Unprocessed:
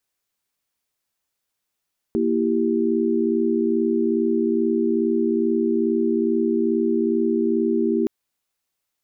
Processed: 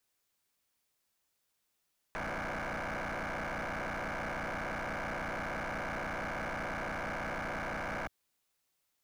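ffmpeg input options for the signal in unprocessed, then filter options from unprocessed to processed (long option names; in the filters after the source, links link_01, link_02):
-f lavfi -i "aevalsrc='0.0794*(sin(2*PI*233.08*t)+sin(2*PI*329.63*t)+sin(2*PI*392*t))':duration=5.92:sample_rate=44100"
-filter_complex "[0:a]acrossover=split=120[link_01][link_02];[link_02]alimiter=limit=-20dB:level=0:latency=1:release=25[link_03];[link_01][link_03]amix=inputs=2:normalize=0,aeval=exprs='0.0237*(abs(mod(val(0)/0.0237+3,4)-2)-1)':channel_layout=same"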